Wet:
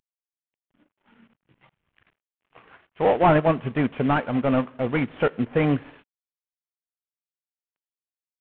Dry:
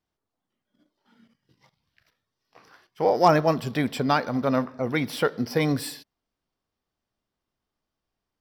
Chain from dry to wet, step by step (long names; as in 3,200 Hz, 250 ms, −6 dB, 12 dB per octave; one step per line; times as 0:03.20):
variable-slope delta modulation 16 kbit/s
transient designer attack −1 dB, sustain −6 dB
level +3.5 dB